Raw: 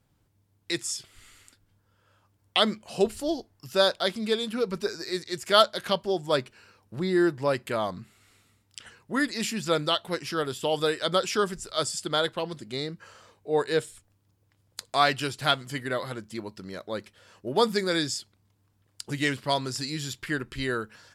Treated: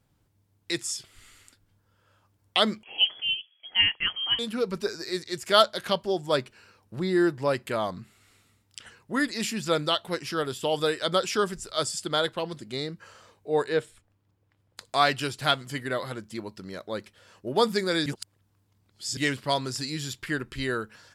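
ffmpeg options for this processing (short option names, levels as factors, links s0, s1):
-filter_complex "[0:a]asettb=1/sr,asplit=3[s0][s1][s2];[s0]atrim=end=2.834[s3];[s1]atrim=start=2.83:end=4.39,asetpts=PTS-STARTPTS,afade=t=in:d=0.004:c=qsin,afade=t=out:st=1.556:d=0.004:c=qsin,lowpass=f=2900:t=q:w=0.5098,lowpass=f=2900:t=q:w=0.6013,lowpass=f=2900:t=q:w=0.9,lowpass=f=2900:t=q:w=2.563,afreqshift=-3400[s4];[s2]atrim=start=4.386[s5];[s3][s4]acrossfade=d=0.004:c1=hsin:c2=qsin[s6];[s6][s5]acrossfade=d=0.004:c1=qsin:c2=hsin,asettb=1/sr,asplit=3[s7][s8][s9];[s7]atrim=end=13.684[s10];[s8]atrim=start=13.68:end=14.81,asetpts=PTS-STARTPTS,afade=t=in:d=0.004:c=qsin,afade=t=out:st=1.126:d=0.004:c=qsin,bass=f=250:g=-2,treble=f=4000:g=-10[s11];[s9]atrim=start=14.806[s12];[s10][s11]acrossfade=d=0.004:c1=hsin:c2=qsin[s13];[s13][s12]acrossfade=d=0.004:c1=qsin:c2=hsin,asplit=3[s14][s15][s16];[s14]atrim=end=18.062[s17];[s15]atrim=start=18.058:end=19.172,asetpts=PTS-STARTPTS,areverse[s18];[s16]atrim=start=19.168[s19];[s17][s18]acrossfade=d=0.004:c1=hsin:c2=hsin[s20];[s20][s19]acrossfade=d=0.004:c1=hsin:c2=hsin"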